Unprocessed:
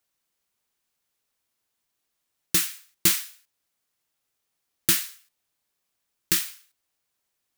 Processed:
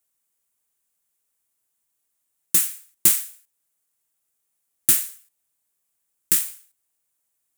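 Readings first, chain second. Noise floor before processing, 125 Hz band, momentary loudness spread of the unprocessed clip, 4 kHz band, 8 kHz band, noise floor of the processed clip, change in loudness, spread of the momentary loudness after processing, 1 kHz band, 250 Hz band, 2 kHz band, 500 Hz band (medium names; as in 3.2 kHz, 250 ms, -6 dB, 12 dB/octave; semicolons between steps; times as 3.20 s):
-80 dBFS, -3.5 dB, 14 LU, -5.0 dB, +5.0 dB, -76 dBFS, +4.0 dB, 14 LU, -3.5 dB, -3.5 dB, -4.0 dB, no reading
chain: resonant high shelf 6.4 kHz +8 dB, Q 1.5; trim -3.5 dB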